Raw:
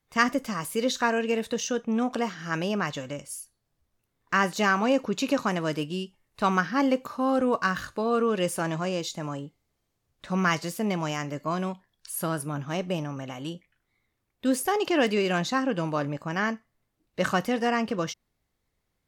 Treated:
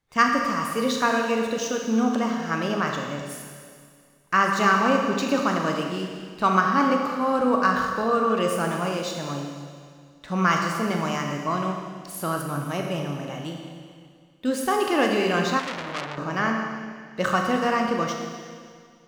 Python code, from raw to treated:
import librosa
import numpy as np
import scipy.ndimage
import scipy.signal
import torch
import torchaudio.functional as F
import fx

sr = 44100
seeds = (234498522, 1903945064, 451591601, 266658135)

y = scipy.ndimage.median_filter(x, 3, mode='constant')
y = fx.rev_schroeder(y, sr, rt60_s=2.1, comb_ms=28, drr_db=1.5)
y = fx.dynamic_eq(y, sr, hz=1200.0, q=3.2, threshold_db=-40.0, ratio=4.0, max_db=6)
y = fx.transformer_sat(y, sr, knee_hz=3600.0, at=(15.59, 16.18))